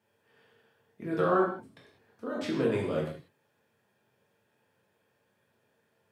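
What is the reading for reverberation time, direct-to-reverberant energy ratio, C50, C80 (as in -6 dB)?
not exponential, -4.0 dB, 4.0 dB, 6.5 dB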